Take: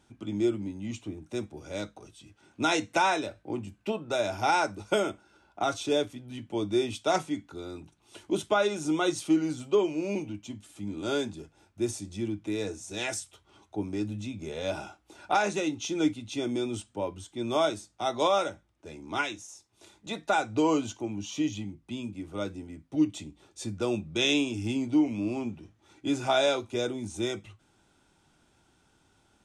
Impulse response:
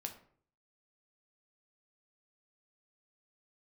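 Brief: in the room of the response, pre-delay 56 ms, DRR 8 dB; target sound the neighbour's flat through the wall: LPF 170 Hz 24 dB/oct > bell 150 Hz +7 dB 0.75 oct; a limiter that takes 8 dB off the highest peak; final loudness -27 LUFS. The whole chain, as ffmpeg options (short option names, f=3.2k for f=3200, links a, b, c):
-filter_complex "[0:a]alimiter=limit=-22dB:level=0:latency=1,asplit=2[a][b];[1:a]atrim=start_sample=2205,adelay=56[c];[b][c]afir=irnorm=-1:irlink=0,volume=-6dB[d];[a][d]amix=inputs=2:normalize=0,lowpass=f=170:w=0.5412,lowpass=f=170:w=1.3066,equalizer=f=150:t=o:w=0.75:g=7,volume=15.5dB"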